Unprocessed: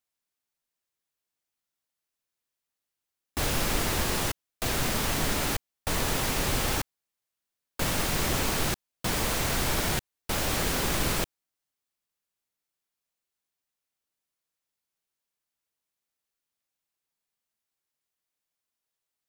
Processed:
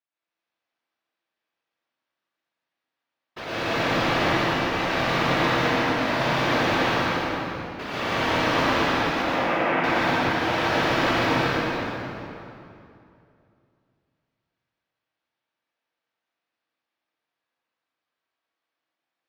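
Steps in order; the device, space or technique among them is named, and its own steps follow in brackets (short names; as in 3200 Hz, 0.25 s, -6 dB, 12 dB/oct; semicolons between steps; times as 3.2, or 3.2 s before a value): whispering ghost (whisperiser; HPF 590 Hz 6 dB/oct; reverb RT60 2.2 s, pre-delay 86 ms, DRR -5.5 dB); 9.22–9.84 elliptic band-pass 160–2600 Hz; air absorption 280 m; plate-style reverb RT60 2.4 s, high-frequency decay 0.8×, pre-delay 0.1 s, DRR -5 dB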